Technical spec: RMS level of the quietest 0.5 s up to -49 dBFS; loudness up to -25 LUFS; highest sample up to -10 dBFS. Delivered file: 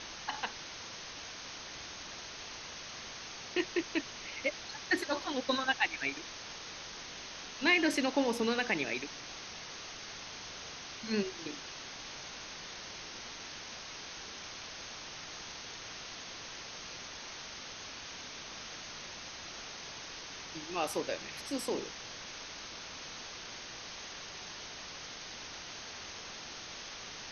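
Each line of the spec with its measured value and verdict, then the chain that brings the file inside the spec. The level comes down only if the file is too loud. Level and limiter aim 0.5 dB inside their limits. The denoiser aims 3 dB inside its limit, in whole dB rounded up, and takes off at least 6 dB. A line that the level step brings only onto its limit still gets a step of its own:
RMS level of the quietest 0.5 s -46 dBFS: fail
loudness -38.0 LUFS: OK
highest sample -15.5 dBFS: OK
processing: denoiser 6 dB, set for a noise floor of -46 dBFS

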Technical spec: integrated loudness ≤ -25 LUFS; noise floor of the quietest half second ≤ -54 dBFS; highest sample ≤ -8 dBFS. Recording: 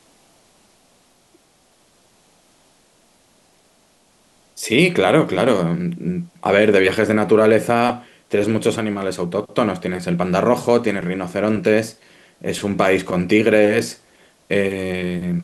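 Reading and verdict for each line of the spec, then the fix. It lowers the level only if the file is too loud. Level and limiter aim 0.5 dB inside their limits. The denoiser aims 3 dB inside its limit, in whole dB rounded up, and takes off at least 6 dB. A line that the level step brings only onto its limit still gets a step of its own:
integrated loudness -18.0 LUFS: fail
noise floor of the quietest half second -57 dBFS: OK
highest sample -2.0 dBFS: fail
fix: gain -7.5 dB

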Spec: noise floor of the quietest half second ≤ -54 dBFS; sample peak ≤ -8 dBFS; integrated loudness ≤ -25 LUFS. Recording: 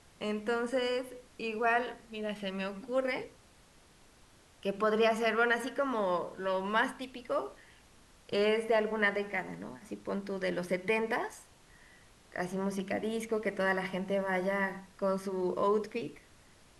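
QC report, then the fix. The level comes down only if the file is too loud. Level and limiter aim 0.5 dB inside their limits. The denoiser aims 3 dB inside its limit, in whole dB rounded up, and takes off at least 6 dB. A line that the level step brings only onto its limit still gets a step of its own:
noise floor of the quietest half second -61 dBFS: OK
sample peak -15.5 dBFS: OK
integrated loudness -32.5 LUFS: OK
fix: none

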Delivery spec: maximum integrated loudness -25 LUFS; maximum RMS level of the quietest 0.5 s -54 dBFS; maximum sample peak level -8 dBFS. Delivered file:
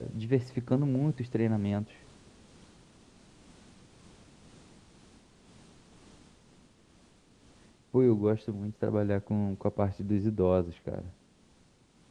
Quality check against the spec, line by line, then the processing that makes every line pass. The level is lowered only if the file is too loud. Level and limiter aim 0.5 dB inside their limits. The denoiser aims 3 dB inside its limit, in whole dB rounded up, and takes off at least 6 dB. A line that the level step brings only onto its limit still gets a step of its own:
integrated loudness -30.0 LUFS: OK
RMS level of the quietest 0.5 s -62 dBFS: OK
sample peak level -12.5 dBFS: OK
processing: none

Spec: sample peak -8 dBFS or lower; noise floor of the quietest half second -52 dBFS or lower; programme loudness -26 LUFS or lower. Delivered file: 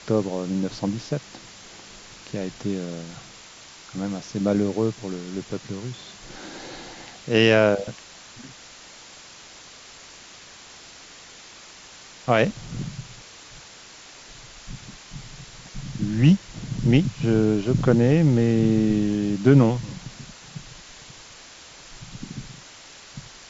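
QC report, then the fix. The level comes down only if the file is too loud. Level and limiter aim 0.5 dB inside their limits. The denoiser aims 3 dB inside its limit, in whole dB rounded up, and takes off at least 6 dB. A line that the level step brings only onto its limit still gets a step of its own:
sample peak -4.5 dBFS: fail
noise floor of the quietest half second -45 dBFS: fail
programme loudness -22.5 LUFS: fail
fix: denoiser 6 dB, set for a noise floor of -45 dBFS; gain -4 dB

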